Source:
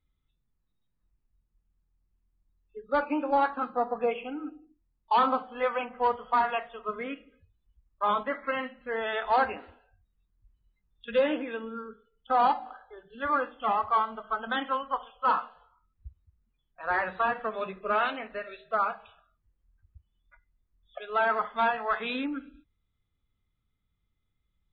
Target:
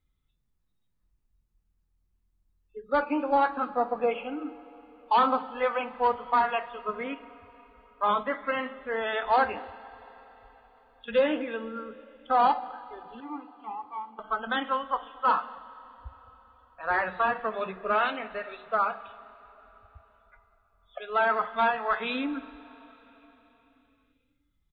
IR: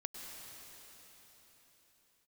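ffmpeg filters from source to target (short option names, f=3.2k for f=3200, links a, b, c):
-filter_complex "[0:a]asettb=1/sr,asplit=3[a][b][c];[a]atrim=end=13.204[d];[b]atrim=start=13.2:end=14.19,asetpts=PTS-STARTPTS,afade=t=in:d=0.004:c=qsin,afade=t=out:st=0.986:d=0.004:c=qsin,asplit=3[e][f][g];[e]bandpass=f=300:t=q:w=8,volume=0dB[h];[f]bandpass=f=870:t=q:w=8,volume=-6dB[i];[g]bandpass=f=2.24k:t=q:w=8,volume=-9dB[j];[h][i][j]amix=inputs=3:normalize=0[k];[c]atrim=start=14.186[l];[d][k]acrossfade=d=0.004:c1=hsin:c2=qsin[m];[m][l]acrossfade=d=0.004:c1=qsin:c2=hsin,asplit=2[n][o];[o]adelay=233.2,volume=-25dB,highshelf=f=4k:g=-5.25[p];[n][p]amix=inputs=2:normalize=0,asplit=2[q][r];[1:a]atrim=start_sample=2205[s];[r][s]afir=irnorm=-1:irlink=0,volume=-12.5dB[t];[q][t]amix=inputs=2:normalize=0"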